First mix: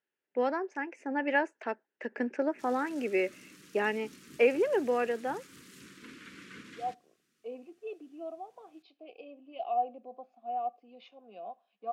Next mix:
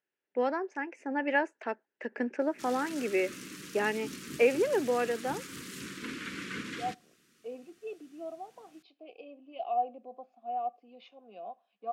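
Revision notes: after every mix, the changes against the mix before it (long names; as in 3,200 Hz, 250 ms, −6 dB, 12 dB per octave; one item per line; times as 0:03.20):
background +10.0 dB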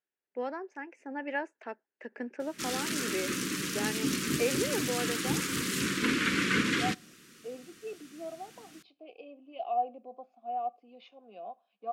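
first voice −6.0 dB
background +11.5 dB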